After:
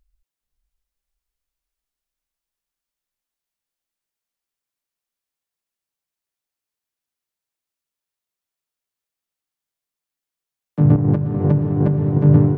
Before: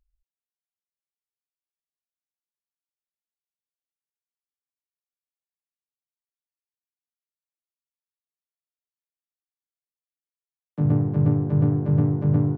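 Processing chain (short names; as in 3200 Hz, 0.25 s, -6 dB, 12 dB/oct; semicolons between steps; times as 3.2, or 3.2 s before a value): 10.96–12.18 negative-ratio compressor -26 dBFS, ratio -1; diffused feedback echo 0.56 s, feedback 50%, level -6.5 dB; gain +7.5 dB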